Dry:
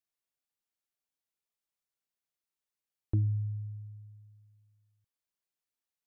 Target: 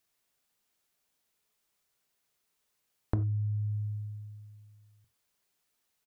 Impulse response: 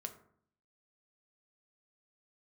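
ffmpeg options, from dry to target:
-filter_complex "[0:a]acompressor=threshold=-41dB:ratio=6,asplit=2[link_01][link_02];[link_02]adelay=90,highpass=300,lowpass=3400,asoftclip=type=hard:threshold=-35.5dB,volume=-30dB[link_03];[link_01][link_03]amix=inputs=2:normalize=0,asplit=2[link_04][link_05];[1:a]atrim=start_sample=2205,atrim=end_sample=4410[link_06];[link_05][link_06]afir=irnorm=-1:irlink=0,volume=5.5dB[link_07];[link_04][link_07]amix=inputs=2:normalize=0,volume=6dB"

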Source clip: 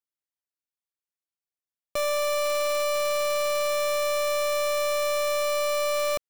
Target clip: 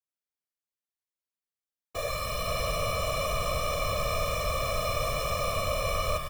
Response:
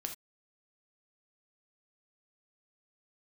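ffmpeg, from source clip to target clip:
-af "aeval=exprs='0.0562*(cos(1*acos(clip(val(0)/0.0562,-1,1)))-cos(1*PI/2))+0.00891*(cos(8*acos(clip(val(0)/0.0562,-1,1)))-cos(8*PI/2))':channel_layout=same,aecho=1:1:130|299|518.7|804.3|1176:0.631|0.398|0.251|0.158|0.1,afftfilt=real='hypot(re,im)*cos(2*PI*random(0))':imag='hypot(re,im)*sin(2*PI*random(1))':win_size=512:overlap=0.75"

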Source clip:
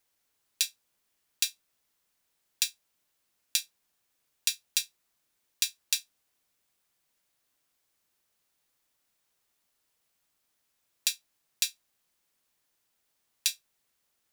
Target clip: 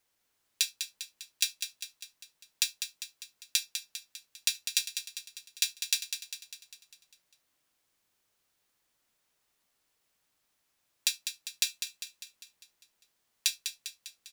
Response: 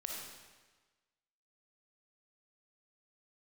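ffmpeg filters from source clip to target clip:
-filter_complex "[0:a]highshelf=frequency=8100:gain=-4,aecho=1:1:200|400|600|800|1000|1200|1400:0.398|0.219|0.12|0.0662|0.0364|0.02|0.011,asplit=2[link_01][link_02];[1:a]atrim=start_sample=2205,atrim=end_sample=3528[link_03];[link_02][link_03]afir=irnorm=-1:irlink=0,volume=-14.5dB[link_04];[link_01][link_04]amix=inputs=2:normalize=0"

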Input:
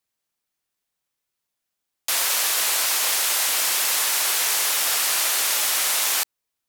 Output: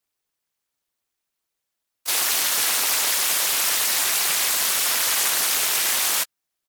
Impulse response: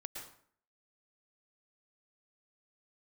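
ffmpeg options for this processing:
-filter_complex "[0:a]afftfilt=real='hypot(re,im)*cos(2*PI*random(0))':imag='hypot(re,im)*sin(2*PI*random(1))':win_size=512:overlap=0.75,asplit=4[link_01][link_02][link_03][link_04];[link_02]asetrate=33038,aresample=44100,atempo=1.33484,volume=-18dB[link_05];[link_03]asetrate=37084,aresample=44100,atempo=1.18921,volume=-17dB[link_06];[link_04]asetrate=55563,aresample=44100,atempo=0.793701,volume=-7dB[link_07];[link_01][link_05][link_06][link_07]amix=inputs=4:normalize=0,aeval=exprs='val(0)*sin(2*PI*180*n/s)':channel_layout=same,volume=8.5dB"

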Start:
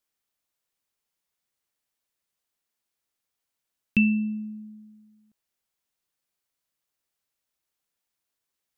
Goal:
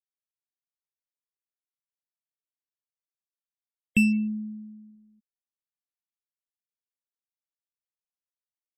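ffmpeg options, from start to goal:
ffmpeg -i in.wav -af "adynamicsmooth=sensitivity=7:basefreq=1300,afftfilt=real='re*gte(hypot(re,im),0.0126)':imag='im*gte(hypot(re,im),0.0126)':win_size=1024:overlap=0.75" out.wav

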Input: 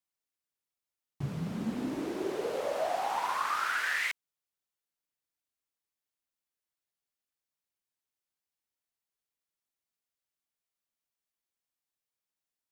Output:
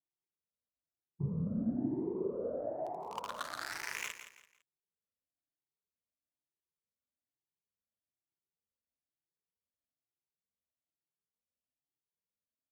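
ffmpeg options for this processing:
ffmpeg -i in.wav -filter_complex "[0:a]afftfilt=real='re*pow(10,16/40*sin(2*PI*(0.79*log(max(b,1)*sr/1024/100)/log(2)-(1.1)*(pts-256)/sr)))':imag='im*pow(10,16/40*sin(2*PI*(0.79*log(max(b,1)*sr/1024/100)/log(2)-(1.1)*(pts-256)/sr)))':win_size=1024:overlap=0.75,highpass=56,lowshelf=frequency=230:gain=7.5,bandreject=frequency=790:width=12,acrossover=split=860[link_01][link_02];[link_02]acrusher=bits=3:mix=0:aa=0.5[link_03];[link_01][link_03]amix=inputs=2:normalize=0,aecho=1:1:168|336|504:0.282|0.0874|0.0271,volume=-7dB" out.wav

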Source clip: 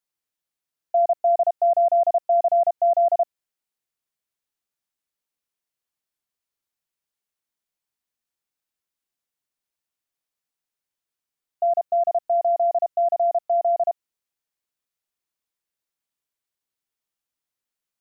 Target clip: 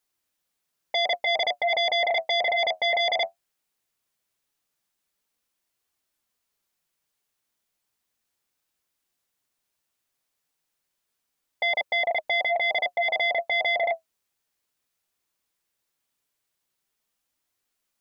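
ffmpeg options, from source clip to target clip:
ffmpeg -i in.wav -af "flanger=delay=2.5:depth=9.8:regen=-53:speed=0.17:shape=triangular,aeval=exprs='0.158*sin(PI/2*3.98*val(0)/0.158)':channel_layout=same,volume=-4.5dB" out.wav

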